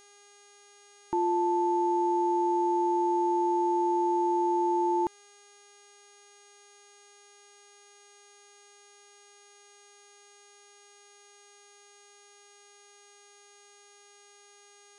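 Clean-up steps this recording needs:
hum removal 407.1 Hz, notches 25
notch filter 6,600 Hz, Q 30

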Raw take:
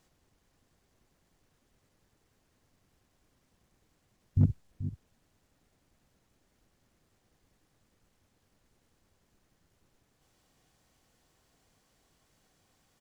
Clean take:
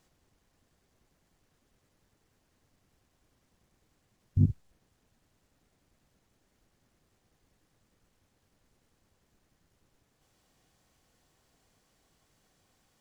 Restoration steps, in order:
clipped peaks rebuilt −15 dBFS
echo removal 434 ms −12.5 dB

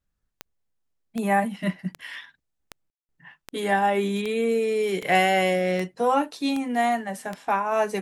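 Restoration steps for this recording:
click removal
ambience match 0:02.90–0:03.09

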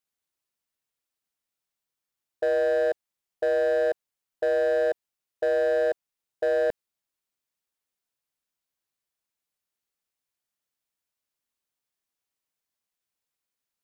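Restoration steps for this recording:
clipped peaks rebuilt −20 dBFS

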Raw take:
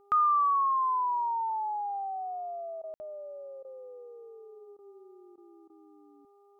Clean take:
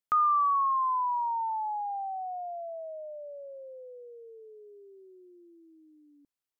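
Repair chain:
hum removal 403 Hz, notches 3
ambience match 0:02.94–0:03.00
repair the gap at 0:02.82/0:03.63/0:04.77/0:05.36/0:05.68, 16 ms

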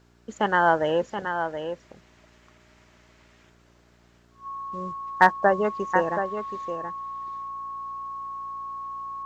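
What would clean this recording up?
clipped peaks rebuilt −5 dBFS
hum removal 58.9 Hz, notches 7
notch filter 1,100 Hz, Q 30
echo removal 726 ms −8 dB

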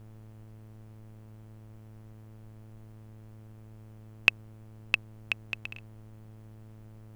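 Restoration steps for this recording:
hum removal 108.7 Hz, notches 31
noise reduction from a noise print 30 dB

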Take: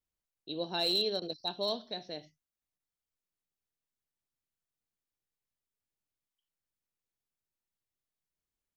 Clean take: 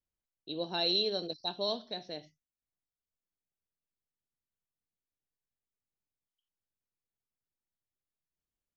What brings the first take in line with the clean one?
clipped peaks rebuilt −23 dBFS
repair the gap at 0:01.20/0:02.78, 15 ms

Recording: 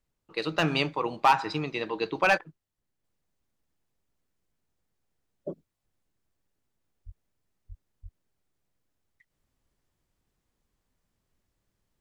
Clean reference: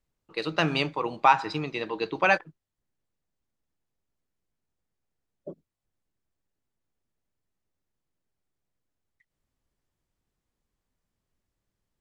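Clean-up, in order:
clipped peaks rebuilt −13 dBFS
high-pass at the plosives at 0:07.05/0:07.68/0:08.02
level correction −4 dB, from 0:03.04

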